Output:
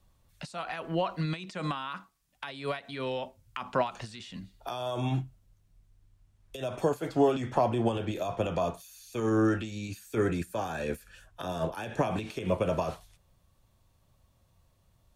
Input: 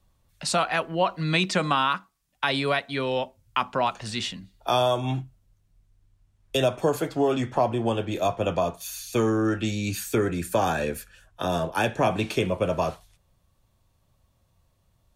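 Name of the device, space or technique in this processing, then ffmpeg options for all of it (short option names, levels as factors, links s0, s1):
de-esser from a sidechain: -filter_complex "[0:a]asplit=2[s0][s1];[s1]highpass=5300,apad=whole_len=668551[s2];[s0][s2]sidechaincompress=threshold=0.00355:ratio=20:attack=3.3:release=74"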